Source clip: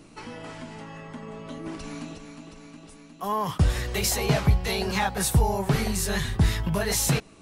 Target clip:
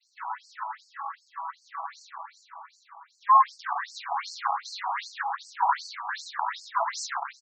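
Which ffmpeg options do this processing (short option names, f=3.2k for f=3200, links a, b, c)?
-filter_complex "[0:a]agate=range=-33dB:threshold=-46dB:ratio=3:detection=peak,asplit=2[a][b];[b]highpass=f=720:p=1,volume=20dB,asoftclip=type=tanh:threshold=-9dB[c];[a][c]amix=inputs=2:normalize=0,lowpass=f=1.8k:p=1,volume=-6dB,equalizer=f=3k:t=o:w=0.4:g=-9.5,aeval=exprs='(tanh(6.31*val(0)+0.7)-tanh(0.7))/6.31':c=same,equalizer=f=1k:t=o:w=0.67:g=8,equalizer=f=2.5k:t=o:w=0.67:g=-10,equalizer=f=10k:t=o:w=0.67:g=-6,asplit=2[d][e];[e]aecho=0:1:130|260|390:0.501|0.135|0.0365[f];[d][f]amix=inputs=2:normalize=0,afftfilt=real='re*between(b*sr/1024,910*pow(6100/910,0.5+0.5*sin(2*PI*2.6*pts/sr))/1.41,910*pow(6100/910,0.5+0.5*sin(2*PI*2.6*pts/sr))*1.41)':imag='im*between(b*sr/1024,910*pow(6100/910,0.5+0.5*sin(2*PI*2.6*pts/sr))/1.41,910*pow(6100/910,0.5+0.5*sin(2*PI*2.6*pts/sr))*1.41)':win_size=1024:overlap=0.75,volume=1.5dB"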